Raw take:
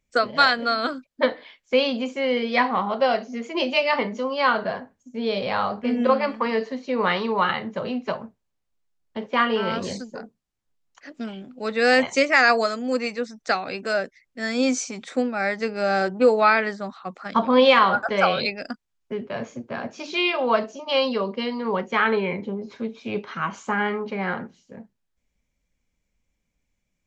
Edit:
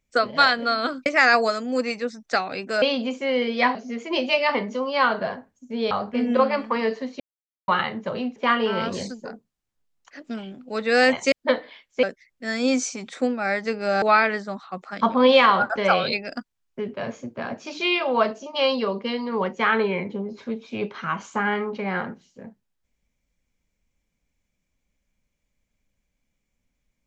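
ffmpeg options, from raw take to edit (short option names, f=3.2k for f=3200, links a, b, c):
-filter_complex "[0:a]asplit=11[a][b][c][d][e][f][g][h][i][j][k];[a]atrim=end=1.062[l];[b]atrim=start=12.218:end=13.982[m];[c]atrim=start=1.768:end=2.702[n];[d]atrim=start=3.188:end=5.352[o];[e]atrim=start=5.608:end=6.9,asetpts=PTS-STARTPTS,afade=t=out:st=1.288:d=0.004:c=hsin[p];[f]atrim=start=6.9:end=7.38,asetpts=PTS-STARTPTS,volume=0[q];[g]atrim=start=7.38:end=8.062,asetpts=PTS-STARTPTS,afade=t=in:d=0.004:c=hsin[r];[h]atrim=start=9.258:end=12.222[s];[i]atrim=start=1.058:end=1.772[t];[j]atrim=start=13.978:end=15.972[u];[k]atrim=start=16.348[v];[l][m]acrossfade=d=0.004:c1=hsin:c2=hsin[w];[w][n]acrossfade=d=0.004:c1=hsin:c2=hsin[x];[x][o]acrossfade=d=0.004:c1=hsin:c2=hsin[y];[p][q][r]concat=n=3:v=0:a=1[z];[y][z]acrossfade=d=0.004:c1=hsin:c2=hsin[aa];[aa][s]acrossfade=d=0.004:c1=hsin:c2=hsin[ab];[ab][t]acrossfade=d=0.004:c1=hsin:c2=hsin[ac];[ac][u]acrossfade=d=0.004:c1=hsin:c2=hsin[ad];[ad][v]acrossfade=d=0.004:c1=hsin:c2=hsin"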